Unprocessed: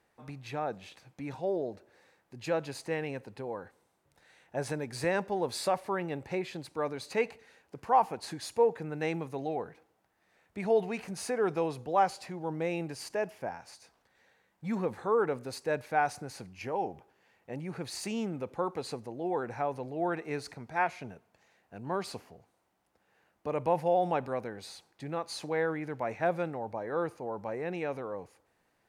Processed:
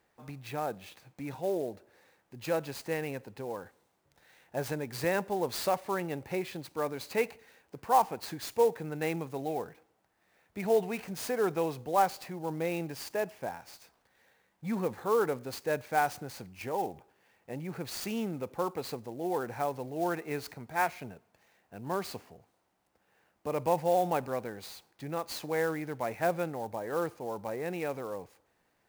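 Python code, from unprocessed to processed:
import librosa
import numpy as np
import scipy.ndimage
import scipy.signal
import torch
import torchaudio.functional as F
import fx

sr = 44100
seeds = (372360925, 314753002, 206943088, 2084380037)

y = fx.high_shelf(x, sr, hz=7700.0, db=5.0)
y = fx.clock_jitter(y, sr, seeds[0], jitter_ms=0.022)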